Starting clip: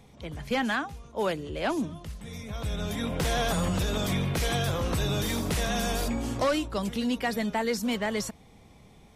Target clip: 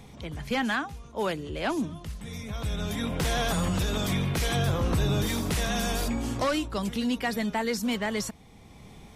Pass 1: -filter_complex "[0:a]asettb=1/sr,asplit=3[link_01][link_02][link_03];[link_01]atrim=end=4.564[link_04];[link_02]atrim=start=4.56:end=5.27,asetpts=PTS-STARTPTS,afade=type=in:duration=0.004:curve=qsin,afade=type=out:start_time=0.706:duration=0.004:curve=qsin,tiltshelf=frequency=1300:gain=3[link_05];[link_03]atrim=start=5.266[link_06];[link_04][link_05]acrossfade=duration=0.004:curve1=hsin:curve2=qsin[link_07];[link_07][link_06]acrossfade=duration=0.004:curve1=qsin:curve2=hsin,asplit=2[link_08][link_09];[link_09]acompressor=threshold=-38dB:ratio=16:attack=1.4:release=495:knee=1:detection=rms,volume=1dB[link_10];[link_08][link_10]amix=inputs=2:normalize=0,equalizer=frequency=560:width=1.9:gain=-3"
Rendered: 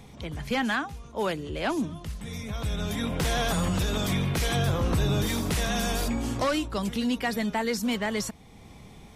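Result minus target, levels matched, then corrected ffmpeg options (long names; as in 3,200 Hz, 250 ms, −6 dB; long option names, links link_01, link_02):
downward compressor: peak gain reduction −6 dB
-filter_complex "[0:a]asettb=1/sr,asplit=3[link_01][link_02][link_03];[link_01]atrim=end=4.564[link_04];[link_02]atrim=start=4.56:end=5.27,asetpts=PTS-STARTPTS,afade=type=in:duration=0.004:curve=qsin,afade=type=out:start_time=0.706:duration=0.004:curve=qsin,tiltshelf=frequency=1300:gain=3[link_05];[link_03]atrim=start=5.266[link_06];[link_04][link_05]acrossfade=duration=0.004:curve1=hsin:curve2=qsin[link_07];[link_07][link_06]acrossfade=duration=0.004:curve1=qsin:curve2=hsin,asplit=2[link_08][link_09];[link_09]acompressor=threshold=-44.5dB:ratio=16:attack=1.4:release=495:knee=1:detection=rms,volume=1dB[link_10];[link_08][link_10]amix=inputs=2:normalize=0,equalizer=frequency=560:width=1.9:gain=-3"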